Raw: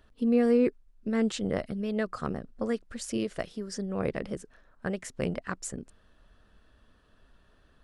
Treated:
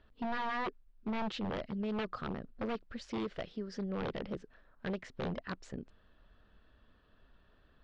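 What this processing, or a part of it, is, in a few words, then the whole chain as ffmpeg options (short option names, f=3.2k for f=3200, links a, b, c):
synthesiser wavefolder: -af "aeval=exprs='0.0473*(abs(mod(val(0)/0.0473+3,4)-2)-1)':c=same,lowpass=f=4.4k:w=0.5412,lowpass=f=4.4k:w=1.3066,volume=-3.5dB"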